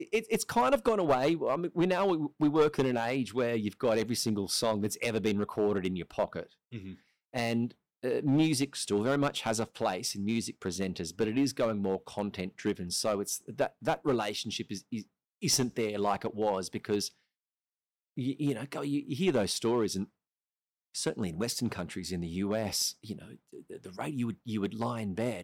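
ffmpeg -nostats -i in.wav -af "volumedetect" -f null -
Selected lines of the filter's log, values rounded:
mean_volume: -31.8 dB
max_volume: -12.0 dB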